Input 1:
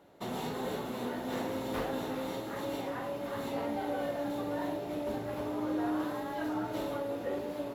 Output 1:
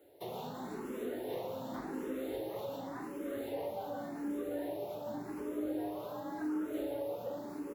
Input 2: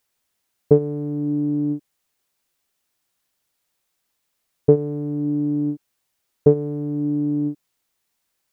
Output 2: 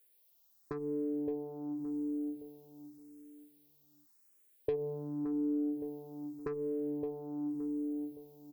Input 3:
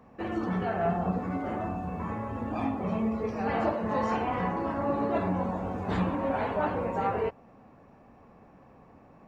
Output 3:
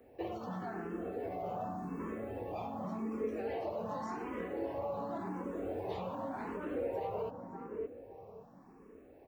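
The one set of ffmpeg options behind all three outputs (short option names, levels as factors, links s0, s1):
-filter_complex "[0:a]asoftclip=type=tanh:threshold=0.168,aemphasis=mode=production:type=50fm,acrossover=split=300|3800[s0][s1][s2];[s0]acompressor=threshold=0.0141:ratio=4[s3];[s1]acompressor=threshold=0.0355:ratio=4[s4];[s2]acompressor=threshold=0.00316:ratio=4[s5];[s3][s4][s5]amix=inputs=3:normalize=0,asplit=2[s6][s7];[s7]adelay=568,lowpass=f=830:p=1,volume=0.473,asplit=2[s8][s9];[s9]adelay=568,lowpass=f=830:p=1,volume=0.36,asplit=2[s10][s11];[s11]adelay=568,lowpass=f=830:p=1,volume=0.36,asplit=2[s12][s13];[s13]adelay=568,lowpass=f=830:p=1,volume=0.36[s14];[s8][s10][s12][s14]amix=inputs=4:normalize=0[s15];[s6][s15]amix=inputs=2:normalize=0,acompressor=threshold=0.0282:ratio=4,equalizer=f=400:t=o:w=1.4:g=9,asplit=2[s16][s17];[s17]afreqshift=0.88[s18];[s16][s18]amix=inputs=2:normalize=1,volume=0.501"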